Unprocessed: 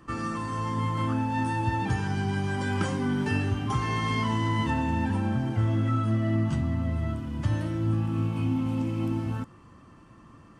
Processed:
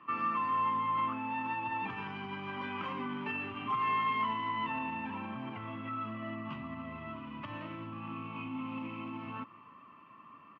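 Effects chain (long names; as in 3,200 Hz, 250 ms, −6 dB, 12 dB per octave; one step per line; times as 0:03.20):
brickwall limiter −22.5 dBFS, peak gain reduction 8 dB
loudspeaker in its box 340–2,800 Hz, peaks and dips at 340 Hz −9 dB, 500 Hz −9 dB, 760 Hz −8 dB, 1,100 Hz +8 dB, 1,600 Hz −9 dB, 2,600 Hz +7 dB
single-tap delay 292 ms −23.5 dB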